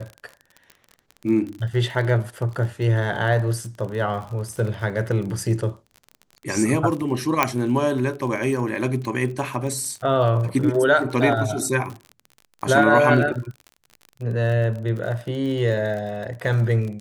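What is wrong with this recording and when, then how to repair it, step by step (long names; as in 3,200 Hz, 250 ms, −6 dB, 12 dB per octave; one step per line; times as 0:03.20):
surface crackle 35 per second −30 dBFS
0:07.43: click −3 dBFS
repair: click removal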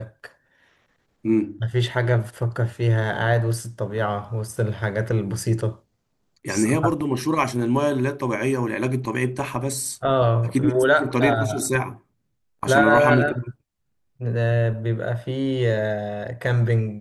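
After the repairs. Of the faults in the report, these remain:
none of them is left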